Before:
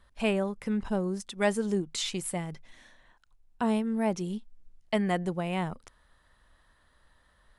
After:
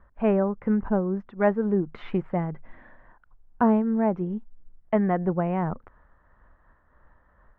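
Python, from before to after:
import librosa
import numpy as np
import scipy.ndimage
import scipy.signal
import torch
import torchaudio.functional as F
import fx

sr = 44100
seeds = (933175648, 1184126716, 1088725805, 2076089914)

p1 = scipy.signal.sosfilt(scipy.signal.butter(4, 1600.0, 'lowpass', fs=sr, output='sos'), x)
p2 = fx.rider(p1, sr, range_db=10, speed_s=0.5)
p3 = p1 + F.gain(torch.from_numpy(p2), 3.0).numpy()
y = fx.am_noise(p3, sr, seeds[0], hz=5.7, depth_pct=55)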